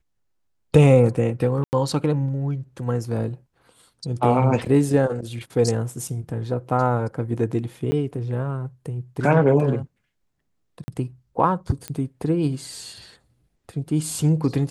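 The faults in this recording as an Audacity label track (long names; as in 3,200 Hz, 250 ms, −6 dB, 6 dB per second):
1.640000	1.730000	drop-out 89 ms
4.650000	4.660000	drop-out 5.2 ms
6.080000	6.080000	drop-out 2.2 ms
7.910000	7.920000	drop-out 10 ms
10.840000	10.880000	drop-out 40 ms
11.880000	11.880000	click −14 dBFS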